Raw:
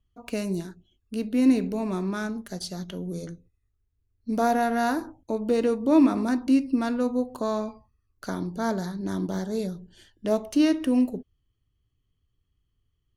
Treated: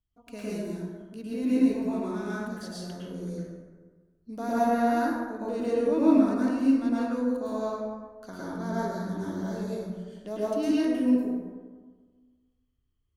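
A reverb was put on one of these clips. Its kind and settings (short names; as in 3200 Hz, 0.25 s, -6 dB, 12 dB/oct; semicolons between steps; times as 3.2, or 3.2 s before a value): plate-style reverb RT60 1.5 s, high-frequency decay 0.45×, pre-delay 95 ms, DRR -8.5 dB; gain -12.5 dB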